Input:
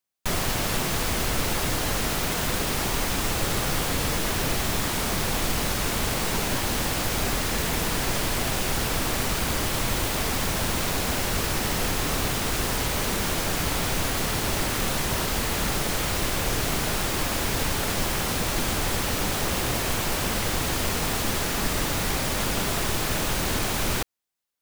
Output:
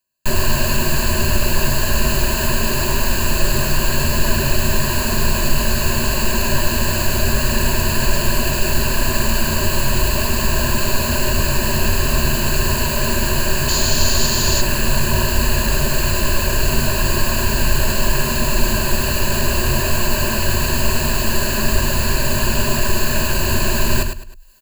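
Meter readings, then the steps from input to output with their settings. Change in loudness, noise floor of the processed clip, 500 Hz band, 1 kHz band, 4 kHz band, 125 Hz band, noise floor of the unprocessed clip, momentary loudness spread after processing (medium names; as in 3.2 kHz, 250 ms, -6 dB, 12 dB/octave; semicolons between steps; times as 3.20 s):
+7.0 dB, -20 dBFS, +7.0 dB, +5.0 dB, +6.0 dB, +9.5 dB, -27 dBFS, 1 LU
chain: in parallel at -5 dB: hard clipper -24 dBFS, distortion -11 dB; on the sum: feedback delay 104 ms, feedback 19%, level -7.5 dB; painted sound noise, 13.68–14.62 s, 3–7.3 kHz -24 dBFS; rippled EQ curve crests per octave 1.4, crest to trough 16 dB; reverse; upward compressor, threshold -32 dBFS; reverse; bass shelf 100 Hz +7 dB; trim -1 dB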